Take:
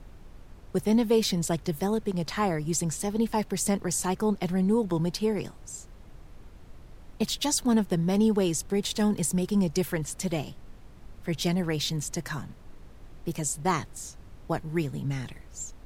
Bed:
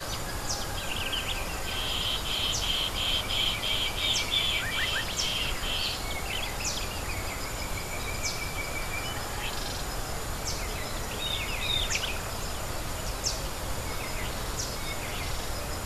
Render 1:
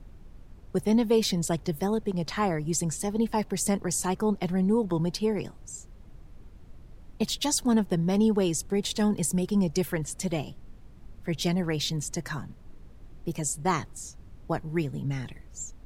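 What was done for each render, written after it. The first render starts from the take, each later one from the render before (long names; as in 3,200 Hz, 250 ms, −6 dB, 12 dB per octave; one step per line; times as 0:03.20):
broadband denoise 6 dB, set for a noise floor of −49 dBFS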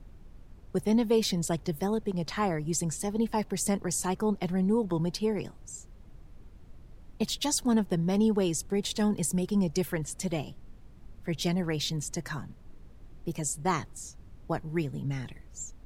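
level −2 dB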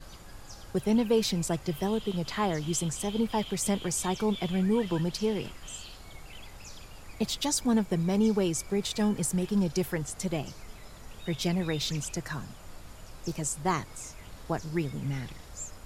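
mix in bed −16.5 dB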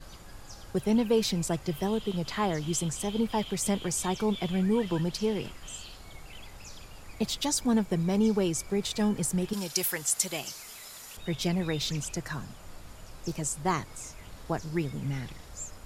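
0:09.53–0:11.17: spectral tilt +4 dB per octave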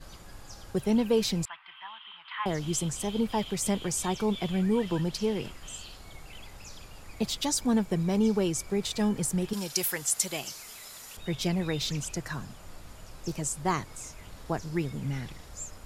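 0:01.45–0:02.46: elliptic band-pass filter 970–3,200 Hz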